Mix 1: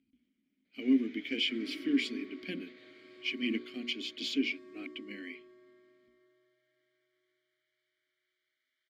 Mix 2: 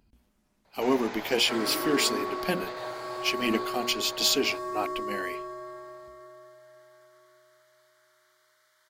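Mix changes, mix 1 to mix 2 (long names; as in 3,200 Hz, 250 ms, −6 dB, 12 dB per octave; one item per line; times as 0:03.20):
speech −4.0 dB
master: remove formant filter i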